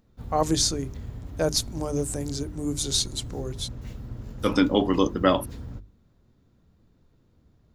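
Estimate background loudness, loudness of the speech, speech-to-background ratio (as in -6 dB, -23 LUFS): -39.0 LUFS, -26.0 LUFS, 13.0 dB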